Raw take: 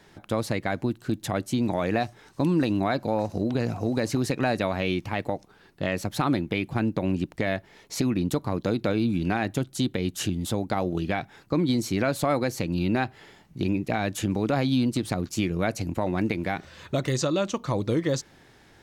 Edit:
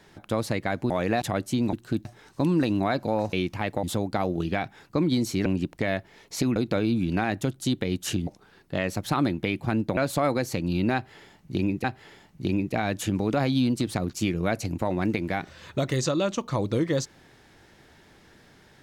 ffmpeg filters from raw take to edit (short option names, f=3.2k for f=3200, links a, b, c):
-filter_complex "[0:a]asplit=12[a][b][c][d][e][f][g][h][i][j][k][l];[a]atrim=end=0.902[m];[b]atrim=start=1.728:end=2.052[n];[c]atrim=start=1.218:end=1.732[o];[d]atrim=start=0.898:end=1.222[p];[e]atrim=start=2.048:end=3.332[q];[f]atrim=start=4.848:end=5.352[r];[g]atrim=start=10.398:end=12.032[s];[h]atrim=start=7.048:end=8.152[t];[i]atrim=start=8.688:end=10.402[u];[j]atrim=start=5.348:end=7.052[v];[k]atrim=start=12.028:end=13.902[w];[l]atrim=start=12.998[x];[m][n]acrossfade=d=0.004:c1=hsin:c2=hsin[y];[y][o]acrossfade=d=0.004:c1=hsin:c2=hsin[z];[z][p]acrossfade=d=0.004:c1=hsin:c2=hsin[aa];[aa][q]acrossfade=d=0.004:c1=hsin:c2=hsin[ab];[ab][r]acrossfade=d=0.004:c1=hsin:c2=hsin[ac];[ac][s]acrossfade=d=0.004:c1=hsin:c2=hsin[ad];[ad][t]acrossfade=d=0.004:c1=hsin:c2=hsin[ae];[ae][u]acrossfade=d=0.004:c1=hsin:c2=hsin[af];[af][v]acrossfade=d=0.004:c1=hsin:c2=hsin[ag];[ag][w]acrossfade=d=0.004:c1=hsin:c2=hsin[ah];[ah][x]acrossfade=d=0.004:c1=hsin:c2=hsin"